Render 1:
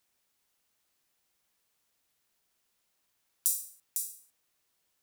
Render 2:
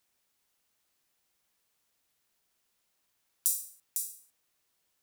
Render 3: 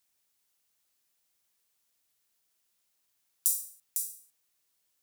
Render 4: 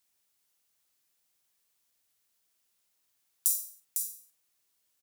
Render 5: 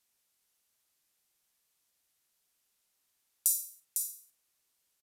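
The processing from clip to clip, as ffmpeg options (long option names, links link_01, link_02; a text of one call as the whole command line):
ffmpeg -i in.wav -af anull out.wav
ffmpeg -i in.wav -af "highshelf=frequency=3500:gain=7.5,volume=-5.5dB" out.wav
ffmpeg -i in.wav -filter_complex "[0:a]asplit=2[link_01][link_02];[link_02]adelay=47,volume=-10.5dB[link_03];[link_01][link_03]amix=inputs=2:normalize=0" out.wav
ffmpeg -i in.wav -af "aresample=32000,aresample=44100" out.wav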